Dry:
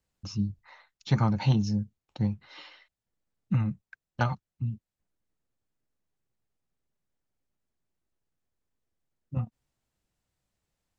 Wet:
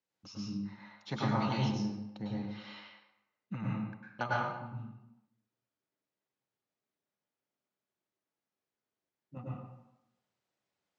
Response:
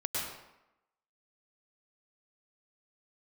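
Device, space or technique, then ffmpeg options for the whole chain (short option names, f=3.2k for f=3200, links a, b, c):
supermarket ceiling speaker: -filter_complex "[0:a]highpass=230,lowpass=6k[a];[1:a]atrim=start_sample=2205[b];[a][b]afir=irnorm=-1:irlink=0,volume=-6dB"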